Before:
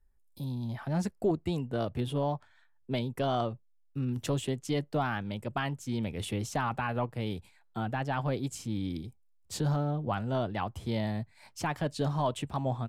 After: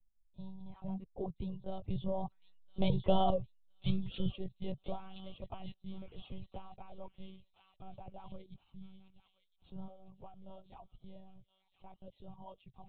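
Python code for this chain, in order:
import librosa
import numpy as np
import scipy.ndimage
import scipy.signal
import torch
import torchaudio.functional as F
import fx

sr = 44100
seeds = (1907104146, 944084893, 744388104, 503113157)

y = fx.doppler_pass(x, sr, speed_mps=14, closest_m=6.4, pass_at_s=3.18)
y = fx.dereverb_blind(y, sr, rt60_s=0.98)
y = fx.low_shelf(y, sr, hz=260.0, db=10.0)
y = fx.echo_wet_highpass(y, sr, ms=1014, feedback_pct=40, hz=2800.0, wet_db=-4.5)
y = fx.dynamic_eq(y, sr, hz=1100.0, q=0.75, threshold_db=-49.0, ratio=4.0, max_db=-3)
y = fx.fixed_phaser(y, sr, hz=700.0, stages=4)
y = fx.lpc_monotone(y, sr, seeds[0], pitch_hz=190.0, order=16)
y = fx.spec_box(y, sr, start_s=4.07, length_s=0.23, low_hz=550.0, high_hz=1300.0, gain_db=-17)
y = y * librosa.db_to_amplitude(4.5)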